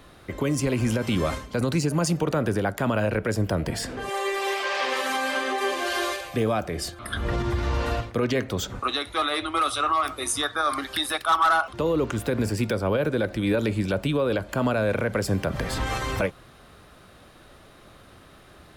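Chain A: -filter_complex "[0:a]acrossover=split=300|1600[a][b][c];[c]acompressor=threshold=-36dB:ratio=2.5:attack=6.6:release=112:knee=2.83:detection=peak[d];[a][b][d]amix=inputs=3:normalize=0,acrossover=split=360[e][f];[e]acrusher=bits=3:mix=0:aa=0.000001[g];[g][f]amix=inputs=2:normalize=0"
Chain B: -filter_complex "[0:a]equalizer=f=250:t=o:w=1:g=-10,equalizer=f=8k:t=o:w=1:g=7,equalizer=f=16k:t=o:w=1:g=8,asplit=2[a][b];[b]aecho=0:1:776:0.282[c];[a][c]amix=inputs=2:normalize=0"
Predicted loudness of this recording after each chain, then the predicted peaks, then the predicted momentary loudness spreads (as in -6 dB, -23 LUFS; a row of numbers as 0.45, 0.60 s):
-26.5, -25.5 LUFS; -11.0, -4.5 dBFS; 7, 7 LU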